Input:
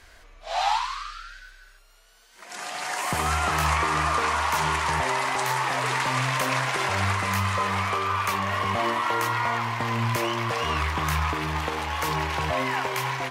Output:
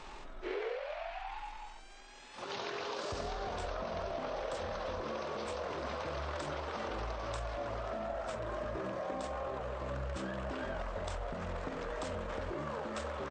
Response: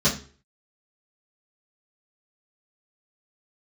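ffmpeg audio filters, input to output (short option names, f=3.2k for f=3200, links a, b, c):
-af "acompressor=threshold=-41dB:ratio=6,asetrate=24750,aresample=44100,atempo=1.7818,volume=4dB"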